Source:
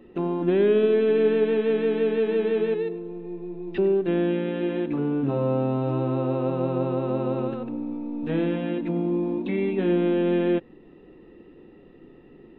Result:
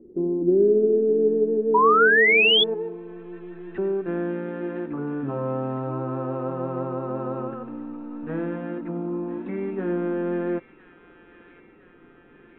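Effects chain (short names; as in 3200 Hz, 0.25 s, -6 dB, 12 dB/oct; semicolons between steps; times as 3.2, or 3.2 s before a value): thin delay 1.01 s, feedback 64%, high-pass 2300 Hz, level -6 dB; low-pass sweep 380 Hz -> 1400 Hz, 1.65–3.39; painted sound rise, 1.74–2.64, 940–3500 Hz -13 dBFS; gain -4.5 dB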